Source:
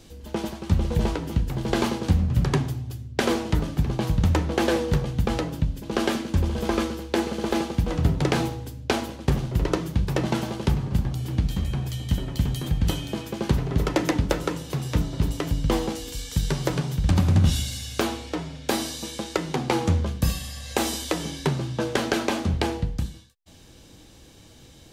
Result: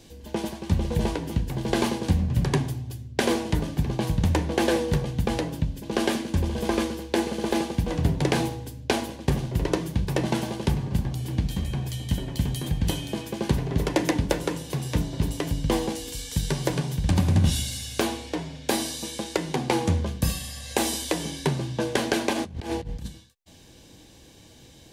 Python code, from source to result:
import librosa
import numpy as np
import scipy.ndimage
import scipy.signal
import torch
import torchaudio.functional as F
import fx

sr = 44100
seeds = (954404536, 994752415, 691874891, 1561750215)

y = fx.over_compress(x, sr, threshold_db=-29.0, ratio=-0.5, at=(22.33, 23.08))
y = fx.low_shelf(y, sr, hz=66.0, db=-6.0)
y = fx.notch(y, sr, hz=1300.0, q=6.0)
y = fx.dynamic_eq(y, sr, hz=9800.0, q=2.4, threshold_db=-56.0, ratio=4.0, max_db=5)